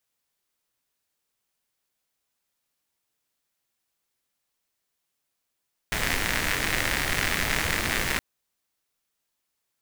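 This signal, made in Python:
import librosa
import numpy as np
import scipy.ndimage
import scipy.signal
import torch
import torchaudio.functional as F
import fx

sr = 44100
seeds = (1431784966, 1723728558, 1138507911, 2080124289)

y = fx.rain(sr, seeds[0], length_s=2.27, drops_per_s=120.0, hz=1900.0, bed_db=0.0)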